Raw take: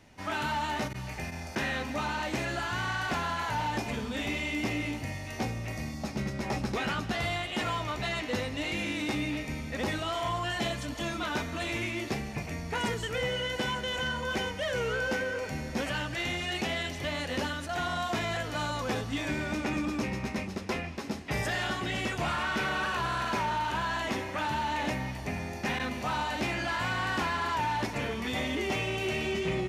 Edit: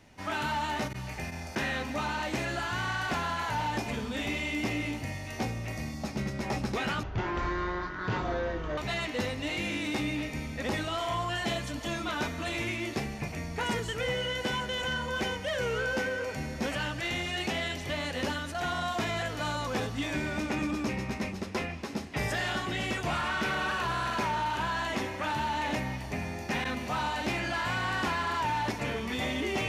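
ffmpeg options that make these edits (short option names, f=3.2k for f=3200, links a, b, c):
-filter_complex "[0:a]asplit=3[a][b][c];[a]atrim=end=7.034[d];[b]atrim=start=7.03:end=7.92,asetpts=PTS-STARTPTS,asetrate=22491,aresample=44100[e];[c]atrim=start=7.916[f];[d][e]acrossfade=d=0.004:c1=hsin:c2=hsin[g];[g][f]acrossfade=d=0.004:c1=hsin:c2=hsin"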